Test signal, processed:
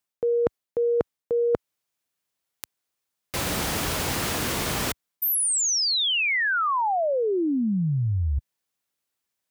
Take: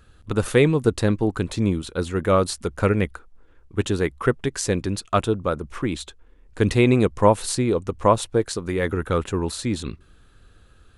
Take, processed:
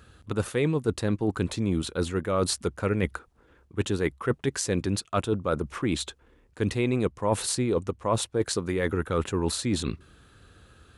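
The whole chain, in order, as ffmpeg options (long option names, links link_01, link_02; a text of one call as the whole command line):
ffmpeg -i in.wav -af "highpass=66,areverse,acompressor=threshold=-25dB:ratio=6,areverse,volume=2.5dB" out.wav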